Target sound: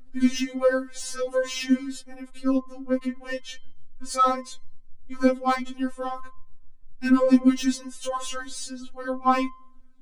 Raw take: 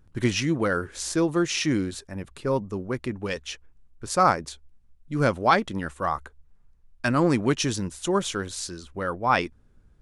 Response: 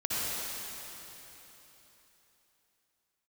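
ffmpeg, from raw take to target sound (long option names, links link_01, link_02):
-filter_complex "[0:a]lowshelf=frequency=270:gain=7.5,bandreject=frequency=346.2:width_type=h:width=4,bandreject=frequency=692.4:width_type=h:width=4,bandreject=frequency=1038.6:width_type=h:width=4,bandreject=frequency=1384.8:width_type=h:width=4,bandreject=frequency=1731:width_type=h:width=4,bandreject=frequency=2077.2:width_type=h:width=4,bandreject=frequency=2423.4:width_type=h:width=4,bandreject=frequency=2769.6:width_type=h:width=4,bandreject=frequency=3115.8:width_type=h:width=4,bandreject=frequency=3462:width_type=h:width=4,bandreject=frequency=3808.2:width_type=h:width=4,bandreject=frequency=4154.4:width_type=h:width=4,bandreject=frequency=4500.6:width_type=h:width=4,bandreject=frequency=4846.8:width_type=h:width=4,bandreject=frequency=5193:width_type=h:width=4,bandreject=frequency=5539.2:width_type=h:width=4,bandreject=frequency=5885.4:width_type=h:width=4,bandreject=frequency=6231.6:width_type=h:width=4,bandreject=frequency=6577.8:width_type=h:width=4,bandreject=frequency=6924:width_type=h:width=4,bandreject=frequency=7270.2:width_type=h:width=4,bandreject=frequency=7616.4:width_type=h:width=4,bandreject=frequency=7962.6:width_type=h:width=4,bandreject=frequency=8308.8:width_type=h:width=4,bandreject=frequency=8655:width_type=h:width=4,bandreject=frequency=9001.2:width_type=h:width=4,bandreject=frequency=9347.4:width_type=h:width=4,bandreject=frequency=9693.6:width_type=h:width=4,aphaser=in_gain=1:out_gain=1:delay=4.9:decay=0.28:speed=0.27:type=triangular,acrossover=split=250|890[link_01][link_02][link_03];[link_03]asoftclip=type=tanh:threshold=-20.5dB[link_04];[link_01][link_02][link_04]amix=inputs=3:normalize=0,afftfilt=real='re*3.46*eq(mod(b,12),0)':imag='im*3.46*eq(mod(b,12),0)':win_size=2048:overlap=0.75"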